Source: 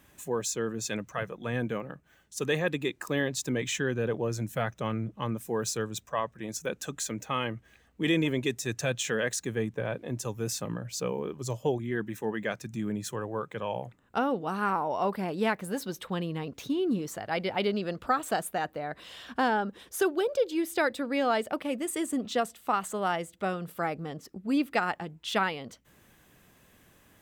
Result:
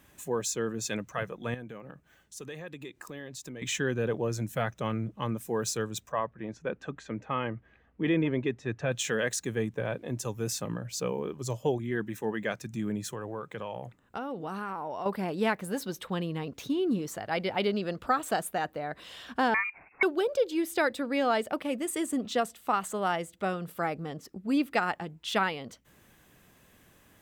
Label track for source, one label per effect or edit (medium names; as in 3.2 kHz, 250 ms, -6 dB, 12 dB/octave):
1.540000	3.620000	compression 3:1, threshold -42 dBFS
6.120000	8.920000	low-pass 2 kHz
13.000000	15.060000	compression, threshold -32 dBFS
19.540000	20.030000	frequency inversion carrier 2.6 kHz